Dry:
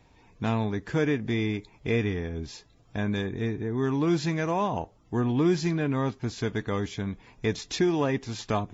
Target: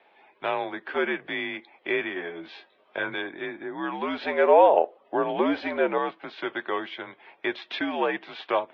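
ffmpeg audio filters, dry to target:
ffmpeg -i in.wav -filter_complex "[0:a]asettb=1/sr,asplit=3[link_01][link_02][link_03];[link_01]atrim=end=2.144[link_04];[link_02]atrim=start=2.14:end=3.14,asetpts=PTS-STARTPTS,afade=type=in:duration=0.004:curve=qsin,afade=type=out:start_time=0.996:duration=0.004:curve=qsin,asplit=2[link_05][link_06];[link_06]adelay=20,volume=-2dB[link_07];[link_05][link_07]amix=inputs=2:normalize=0,atrim=end_sample=44100[link_08];[link_03]atrim=start=3.136[link_09];[link_04][link_08]acrossfade=duration=0.004:curve1=hsin:curve2=qsin[link_10];[link_10][link_09]acrossfade=duration=0.004:curve1=qsin:curve2=hsin,asettb=1/sr,asplit=3[link_11][link_12][link_13];[link_11]atrim=end=4.214[link_14];[link_12]atrim=start=4.21:end=5.98,asetpts=PTS-STARTPTS,afade=type=in:duration=0.004:curve=qsin,afade=type=out:start_time=1.766:duration=0.004:curve=qsin,equalizer=frequency=590:width_type=o:width=1.2:gain=10.5[link_15];[link_13]atrim=start=5.976[link_16];[link_14][link_15]acrossfade=duration=0.004:curve1=hsin:curve2=qsin[link_17];[link_17][link_16]acrossfade=duration=0.004:curve1=qsin:curve2=hsin,highpass=frequency=500:width_type=q:width=0.5412,highpass=frequency=500:width_type=q:width=1.307,lowpass=frequency=3500:width_type=q:width=0.5176,lowpass=frequency=3500:width_type=q:width=0.7071,lowpass=frequency=3500:width_type=q:width=1.932,afreqshift=-77,volume=5.5dB" out.wav

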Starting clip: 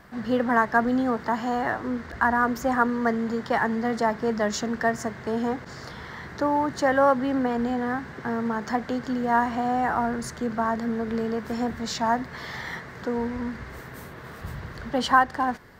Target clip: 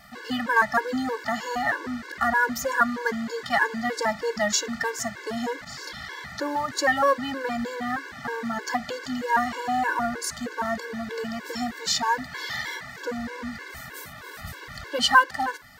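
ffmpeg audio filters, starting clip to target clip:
ffmpeg -i in.wav -af "tiltshelf=frequency=1200:gain=-7.5,afftfilt=real='re*gt(sin(2*PI*3.2*pts/sr)*(1-2*mod(floor(b*sr/1024/290),2)),0)':imag='im*gt(sin(2*PI*3.2*pts/sr)*(1-2*mod(floor(b*sr/1024/290),2)),0)':win_size=1024:overlap=0.75,volume=4.5dB" out.wav

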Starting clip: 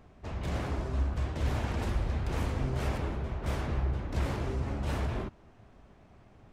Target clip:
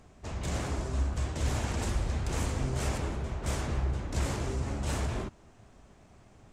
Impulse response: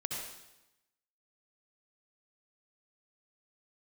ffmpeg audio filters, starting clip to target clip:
-af "equalizer=frequency=7600:width_type=o:width=1.1:gain=13.5"

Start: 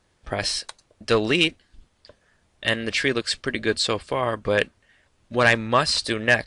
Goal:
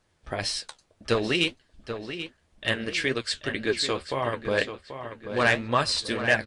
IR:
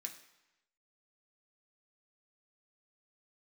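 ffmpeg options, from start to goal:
-filter_complex "[0:a]flanger=delay=6.1:depth=9.9:regen=52:speed=1.9:shape=triangular,asplit=2[link_01][link_02];[link_02]adelay=785,lowpass=frequency=3800:poles=1,volume=-9.5dB,asplit=2[link_03][link_04];[link_04]adelay=785,lowpass=frequency=3800:poles=1,volume=0.44,asplit=2[link_05][link_06];[link_06]adelay=785,lowpass=frequency=3800:poles=1,volume=0.44,asplit=2[link_07][link_08];[link_08]adelay=785,lowpass=frequency=3800:poles=1,volume=0.44,asplit=2[link_09][link_10];[link_10]adelay=785,lowpass=frequency=3800:poles=1,volume=0.44[link_11];[link_01][link_03][link_05][link_07][link_09][link_11]amix=inputs=6:normalize=0"

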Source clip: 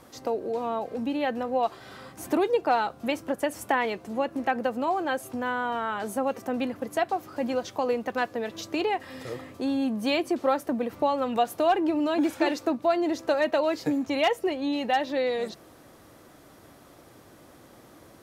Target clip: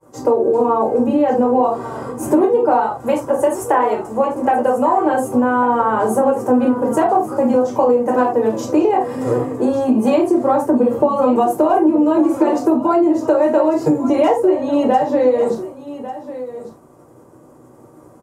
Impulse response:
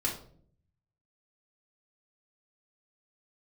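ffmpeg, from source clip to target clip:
-filter_complex "[0:a]asettb=1/sr,asplit=3[link_01][link_02][link_03];[link_01]atrim=end=2.824[link_04];[link_02]atrim=start=2.82:end=5.05,asetpts=PTS-STARTPTS,afade=type=in:duration=0.004:curve=qsin,afade=type=out:start_time=2.226:duration=0.004:curve=qsin,equalizer=frequency=210:width=0.68:gain=-8.5[link_05];[link_03]atrim=start=5.046[link_06];[link_04][link_05]acrossfade=duration=0.004:curve1=hsin:curve2=qsin[link_07];[link_07][link_06]acrossfade=duration=0.004:curve1=qsin:curve2=hsin,agate=range=-33dB:threshold=-43dB:ratio=3:detection=peak,equalizer=frequency=125:width_type=o:width=1:gain=8,equalizer=frequency=250:width_type=o:width=1:gain=8,equalizer=frequency=500:width_type=o:width=1:gain=9,equalizer=frequency=1000:width_type=o:width=1:gain=12,equalizer=frequency=2000:width_type=o:width=1:gain=-4,equalizer=frequency=4000:width_type=o:width=1:gain=-10,equalizer=frequency=8000:width_type=o:width=1:gain=10[link_08];[1:a]atrim=start_sample=2205,afade=type=out:start_time=0.15:duration=0.01,atrim=end_sample=7056,asetrate=48510,aresample=44100[link_09];[link_08][link_09]afir=irnorm=-1:irlink=0,acompressor=threshold=-12dB:ratio=6,aecho=1:1:1146:0.2,volume=1dB"

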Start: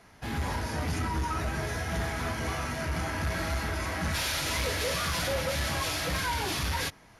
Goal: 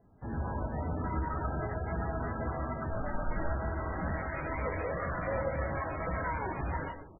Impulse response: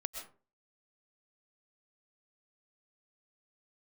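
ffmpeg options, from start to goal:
-filter_complex "[0:a]asettb=1/sr,asplit=3[link_01][link_02][link_03];[link_01]atrim=end=2.904[link_04];[link_02]atrim=start=2.9:end=3.37,asetpts=PTS-STARTPTS,afade=type=in:duration=0.004:curve=qsin,afade=type=out:start_time=0.466:duration=0.004:curve=qsin,afreqshift=-57[link_05];[link_03]atrim=start=3.366[link_06];[link_04][link_05]acrossfade=duration=0.004:curve1=hsin:curve2=qsin[link_07];[link_07][link_06]acrossfade=duration=0.004:curve1=qsin:curve2=hsin,asoftclip=type=tanh:threshold=-22dB,asplit=2[link_08][link_09];[link_09]adelay=630,lowpass=frequency=2300:poles=1,volume=-17dB,asplit=2[link_10][link_11];[link_11]adelay=630,lowpass=frequency=2300:poles=1,volume=0.47,asplit=2[link_12][link_13];[link_13]adelay=630,lowpass=frequency=2300:poles=1,volume=0.47,asplit=2[link_14][link_15];[link_15]adelay=630,lowpass=frequency=2300:poles=1,volume=0.47[link_16];[link_08][link_10][link_12][link_14][link_16]amix=inputs=5:normalize=0[link_17];[1:a]atrim=start_sample=2205[link_18];[link_17][link_18]afir=irnorm=-1:irlink=0,adynamicsmooth=sensitivity=3:basefreq=540" -ar 16000 -c:a libmp3lame -b:a 8k

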